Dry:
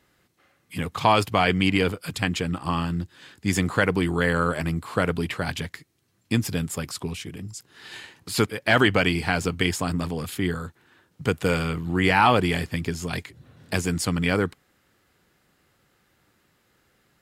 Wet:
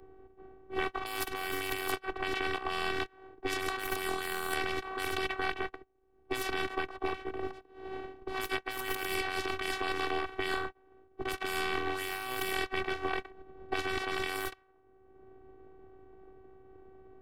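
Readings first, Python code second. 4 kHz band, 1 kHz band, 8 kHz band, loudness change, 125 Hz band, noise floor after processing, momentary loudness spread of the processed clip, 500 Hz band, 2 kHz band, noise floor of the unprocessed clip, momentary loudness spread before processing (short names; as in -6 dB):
-7.5 dB, -9.0 dB, -10.0 dB, -10.5 dB, -23.5 dB, -64 dBFS, 8 LU, -9.5 dB, -8.0 dB, -67 dBFS, 14 LU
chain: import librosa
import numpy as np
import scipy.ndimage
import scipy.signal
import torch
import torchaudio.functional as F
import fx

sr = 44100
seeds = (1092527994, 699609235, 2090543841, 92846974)

y = fx.spec_flatten(x, sr, power=0.27)
y = fx.peak_eq(y, sr, hz=6800.0, db=-12.5, octaves=1.4)
y = fx.env_lowpass(y, sr, base_hz=410.0, full_db=-20.0)
y = fx.over_compress(y, sr, threshold_db=-32.0, ratio=-1.0)
y = fx.robotise(y, sr, hz=380.0)
y = fx.band_squash(y, sr, depth_pct=70)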